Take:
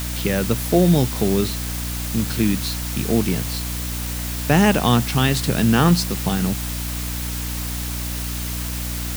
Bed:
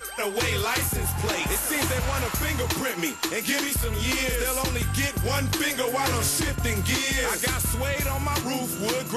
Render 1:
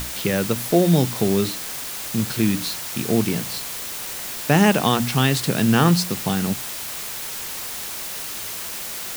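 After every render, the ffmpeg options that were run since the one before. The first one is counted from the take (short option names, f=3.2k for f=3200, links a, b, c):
-af "bandreject=f=60:t=h:w=6,bandreject=f=120:t=h:w=6,bandreject=f=180:t=h:w=6,bandreject=f=240:t=h:w=6,bandreject=f=300:t=h:w=6"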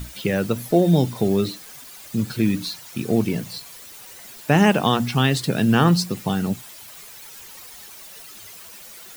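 -af "afftdn=nr=13:nf=-31"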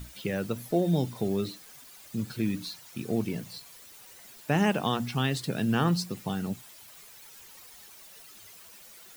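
-af "volume=-9dB"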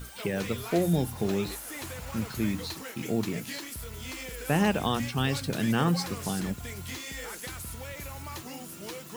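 -filter_complex "[1:a]volume=-14dB[a];[0:a][a]amix=inputs=2:normalize=0"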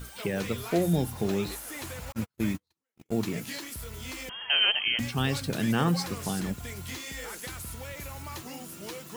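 -filter_complex "[0:a]asettb=1/sr,asplit=3[a][b][c];[a]atrim=end=2.124[d];[b]atrim=start=2.12:end=3.21,asetpts=PTS-STARTPTS,afade=t=in:d=0.004:c=qsin,afade=t=out:st=1.086:d=0.004:c=qsin,agate=range=-50dB:threshold=-31dB:ratio=16:release=100:detection=peak[e];[c]atrim=start=3.206[f];[d][e]acrossfade=d=0.004:c1=hsin:c2=qsin[g];[g][f]acrossfade=d=0.004:c1=qsin:c2=hsin,asettb=1/sr,asplit=3[h][i][j];[h]atrim=end=4.294[k];[i]atrim=start=4.29:end=4.99,asetpts=PTS-STARTPTS,afade=t=in:d=0.004:c=qsin,afade=t=out:st=0.696:d=0.004:c=qsin,lowpass=f=2.8k:t=q:w=0.5098,lowpass=f=2.8k:t=q:w=0.6013,lowpass=f=2.8k:t=q:w=0.9,lowpass=f=2.8k:t=q:w=2.563,afreqshift=-3300[l];[j]atrim=start=4.986[m];[k][l]acrossfade=d=0.004:c1=hsin:c2=qsin[n];[n][m]acrossfade=d=0.004:c1=qsin:c2=hsin"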